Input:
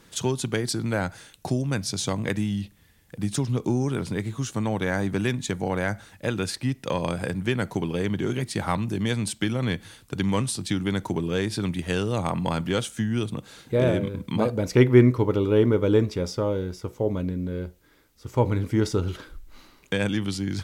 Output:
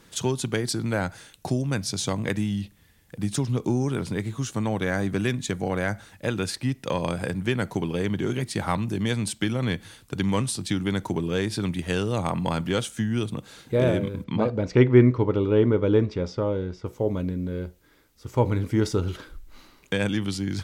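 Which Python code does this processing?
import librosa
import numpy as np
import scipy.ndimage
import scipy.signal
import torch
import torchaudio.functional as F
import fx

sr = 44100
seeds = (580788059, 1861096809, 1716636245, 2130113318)

y = fx.notch(x, sr, hz=890.0, q=9.8, at=(4.75, 5.88))
y = fx.air_absorb(y, sr, metres=140.0, at=(14.24, 16.86))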